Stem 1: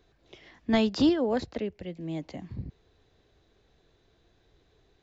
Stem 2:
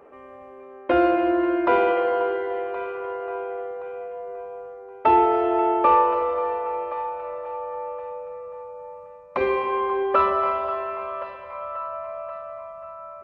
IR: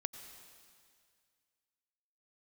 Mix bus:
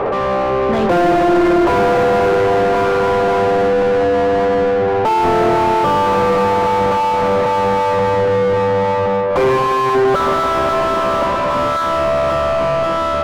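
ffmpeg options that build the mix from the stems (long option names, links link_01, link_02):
-filter_complex "[0:a]volume=-7dB[link_01];[1:a]asplit=2[link_02][link_03];[link_03]highpass=frequency=720:poles=1,volume=24dB,asoftclip=type=tanh:threshold=-7dB[link_04];[link_02][link_04]amix=inputs=2:normalize=0,lowpass=frequency=1000:poles=1,volume=-6dB,volume=-0.5dB[link_05];[link_01][link_05]amix=inputs=2:normalize=0,asplit=2[link_06][link_07];[link_07]highpass=frequency=720:poles=1,volume=35dB,asoftclip=type=tanh:threshold=-8.5dB[link_08];[link_06][link_08]amix=inputs=2:normalize=0,lowpass=frequency=1000:poles=1,volume=-6dB,equalizer=frequency=160:width_type=o:width=2.4:gain=5"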